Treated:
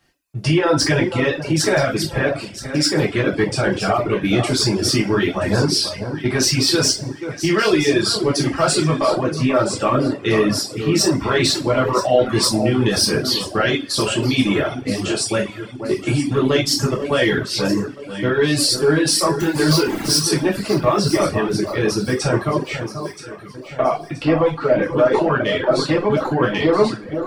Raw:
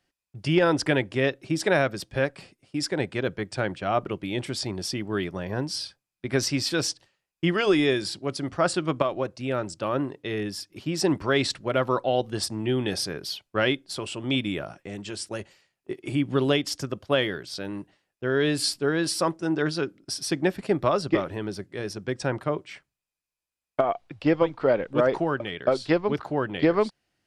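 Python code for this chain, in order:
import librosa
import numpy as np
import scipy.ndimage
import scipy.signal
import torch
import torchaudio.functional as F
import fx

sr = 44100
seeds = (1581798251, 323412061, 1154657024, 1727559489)

p1 = fx.zero_step(x, sr, step_db=-32.0, at=(19.4, 20.19))
p2 = fx.over_compress(p1, sr, threshold_db=-28.0, ratio=-0.5)
p3 = p1 + F.gain(torch.from_numpy(p2), 1.0).numpy()
p4 = 10.0 ** (-10.5 / 20.0) * np.tanh(p3 / 10.0 ** (-10.5 / 20.0))
p5 = p4 + fx.echo_alternate(p4, sr, ms=488, hz=1400.0, feedback_pct=64, wet_db=-8, dry=0)
p6 = fx.rev_double_slope(p5, sr, seeds[0], early_s=0.45, late_s=1.6, knee_db=-18, drr_db=-5.0)
y = fx.dereverb_blind(p6, sr, rt60_s=0.7)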